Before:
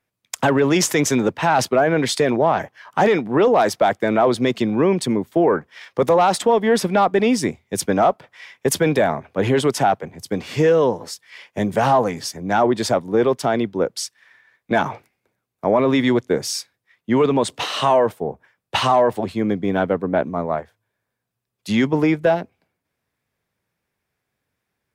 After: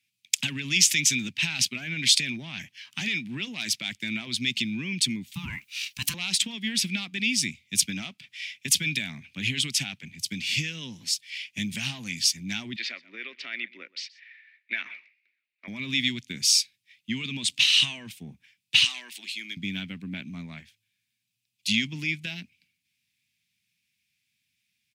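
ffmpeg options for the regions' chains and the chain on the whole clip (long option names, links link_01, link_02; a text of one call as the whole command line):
ffmpeg -i in.wav -filter_complex "[0:a]asettb=1/sr,asplit=3[link_01][link_02][link_03];[link_01]atrim=end=5.344[link_04];[link_02]atrim=start=5.34:end=6.14,asetpts=PTS-STARTPTS,afade=type=in:duration=0.004:curve=qsin,afade=type=out:start_time=0.796:duration=0.004:curve=qsin,aemphasis=mode=production:type=riaa,aeval=exprs='val(0)*sin(2*PI*520*n/s)':channel_layout=same[link_05];[link_03]atrim=start=6.136[link_06];[link_04][link_05]acrossfade=duration=0.004:curve1=hsin:curve2=qsin[link_07];[link_07][link_06]acrossfade=duration=0.004:curve1=qsin:curve2=hsin,asettb=1/sr,asplit=3[link_08][link_09][link_10];[link_08]atrim=end=12.764[link_11];[link_09]atrim=start=12.76:end=15.68,asetpts=PTS-STARTPTS,afade=type=in:duration=0.004:curve=qsin,afade=type=out:start_time=2.916:duration=0.004:curve=qsin,highpass=frequency=390:width=0.5412,highpass=frequency=390:width=1.3066,equalizer=frequency=560:width_type=q:width=4:gain=4,equalizer=frequency=830:width_type=q:width=4:gain=-9,equalizer=frequency=1300:width_type=q:width=4:gain=4,equalizer=frequency=1900:width_type=q:width=4:gain=8,equalizer=frequency=3300:width_type=q:width=4:gain=-8,lowpass=frequency=3400:width=0.5412,lowpass=frequency=3400:width=1.3066,aecho=1:1:125:0.0841,atrim=end_sample=128772[link_12];[link_10]atrim=start=15.676[link_13];[link_11][link_12]acrossfade=duration=0.004:curve1=hsin:curve2=qsin[link_14];[link_14][link_13]acrossfade=duration=0.004:curve1=qsin:curve2=hsin,asettb=1/sr,asplit=3[link_15][link_16][link_17];[link_15]atrim=end=18.844[link_18];[link_16]atrim=start=18.84:end=19.57,asetpts=PTS-STARTPTS,afade=type=in:duration=0.004:curve=qsin,afade=type=out:start_time=0.726:duration=0.004:curve=qsin,highpass=frequency=380:width=0.5412,highpass=frequency=380:width=1.3066,equalizer=frequency=560:width=1.1:gain=-13[link_19];[link_17]atrim=start=19.566[link_20];[link_18][link_19]acrossfade=duration=0.004:curve1=hsin:curve2=qsin[link_21];[link_21][link_20]acrossfade=duration=0.004:curve1=qsin:curve2=hsin,highpass=97,acompressor=threshold=-20dB:ratio=2.5,firequalizer=gain_entry='entry(220,0);entry(460,-28);entry(1200,-17);entry(2400,15);entry(13000,7)':delay=0.05:min_phase=1,volume=-6dB" out.wav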